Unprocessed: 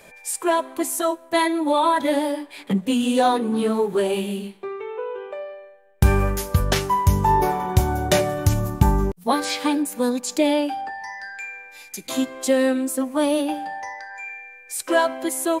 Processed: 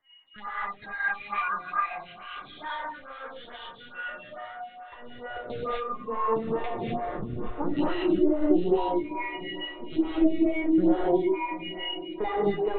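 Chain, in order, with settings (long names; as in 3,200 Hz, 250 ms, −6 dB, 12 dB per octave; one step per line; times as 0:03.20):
spectral dynamics exaggerated over time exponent 1.5
high-pass filter 59 Hz 12 dB per octave
low-shelf EQ 280 Hz +8.5 dB
downward compressor 12 to 1, threshold −28 dBFS, peak gain reduction 23.5 dB
change of speed 1.22×
high-pass filter sweep 1,500 Hz → 270 Hz, 0:04.18–0:05.97
linear-prediction vocoder at 8 kHz pitch kept
feedback delay with all-pass diffusion 727 ms, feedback 60%, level −15.5 dB
reverb whose tail is shaped and stops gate 280 ms rising, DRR −6 dB
phaser with staggered stages 2.3 Hz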